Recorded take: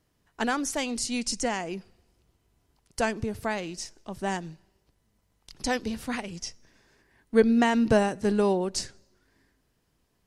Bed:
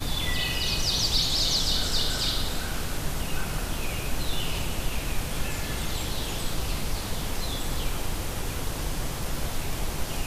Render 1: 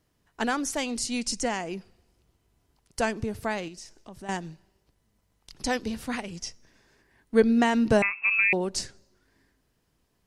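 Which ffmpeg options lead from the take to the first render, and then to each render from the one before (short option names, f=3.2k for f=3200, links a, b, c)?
-filter_complex "[0:a]asettb=1/sr,asplit=3[a][b][c];[a]atrim=end=3.684[d];[b]atrim=start=3.68:end=4.29,asetpts=PTS-STARTPTS,afade=t=in:d=0.004:c=qsin,afade=t=out:st=0.606:d=0.004:c=qsin,acompressor=threshold=-43dB:ratio=2.5:attack=3.2:release=140:knee=1:detection=peak[e];[c]atrim=start=4.286[f];[d][e]acrossfade=d=0.004:c1=hsin:c2=qsin[g];[g][f]acrossfade=d=0.004:c1=qsin:c2=hsin,asettb=1/sr,asplit=3[h][i][j];[h]atrim=end=8.024[k];[i]atrim=start=8.02:end=8.53,asetpts=PTS-STARTPTS,afade=t=in:d=0.004:c=qsin,afade=t=out:st=0.506:d=0.004:c=qsin,lowpass=f=2.4k:t=q:w=0.5098,lowpass=f=2.4k:t=q:w=0.6013,lowpass=f=2.4k:t=q:w=0.9,lowpass=f=2.4k:t=q:w=2.563,afreqshift=-2800[l];[j]atrim=start=8.526[m];[k][l]acrossfade=d=0.004:c1=hsin:c2=qsin[n];[n][m]acrossfade=d=0.004:c1=qsin:c2=hsin"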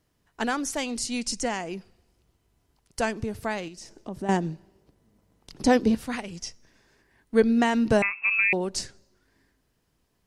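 -filter_complex "[0:a]asettb=1/sr,asplit=3[a][b][c];[a]atrim=end=3.814[d];[b]atrim=start=3.81:end=5.95,asetpts=PTS-STARTPTS,afade=t=in:d=0.004:c=qsin,afade=t=out:st=2.136:d=0.004:c=qsin,equalizer=f=290:w=0.36:g=11[e];[c]atrim=start=5.946[f];[d][e]acrossfade=d=0.004:c1=hsin:c2=qsin[g];[g][f]acrossfade=d=0.004:c1=qsin:c2=hsin"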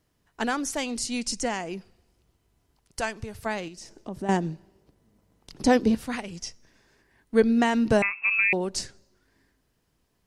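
-filter_complex "[0:a]asettb=1/sr,asplit=3[a][b][c];[a]atrim=end=3.004[d];[b]atrim=start=3:end=3.46,asetpts=PTS-STARTPTS,afade=t=in:d=0.004:c=qsin,afade=t=out:st=0.456:d=0.004:c=qsin,equalizer=f=280:t=o:w=1.8:g=-10[e];[c]atrim=start=3.456[f];[d][e]acrossfade=d=0.004:c1=hsin:c2=qsin[g];[g][f]acrossfade=d=0.004:c1=qsin:c2=hsin"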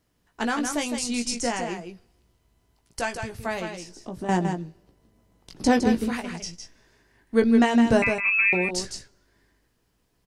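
-filter_complex "[0:a]asplit=2[a][b];[b]adelay=17,volume=-7dB[c];[a][c]amix=inputs=2:normalize=0,aecho=1:1:160:0.473"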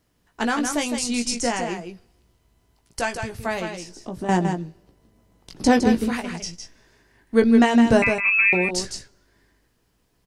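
-af "volume=3dB"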